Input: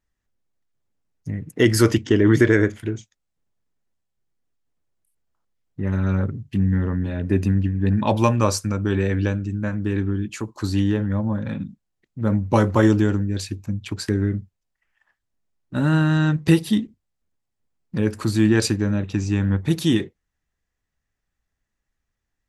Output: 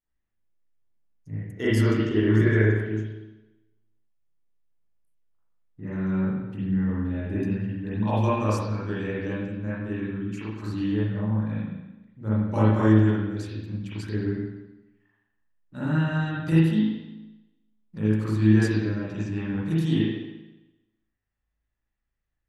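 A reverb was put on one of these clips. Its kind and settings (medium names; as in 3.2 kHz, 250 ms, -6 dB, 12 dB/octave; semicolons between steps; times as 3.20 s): spring tank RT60 1 s, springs 37/56 ms, chirp 60 ms, DRR -10 dB; trim -15.5 dB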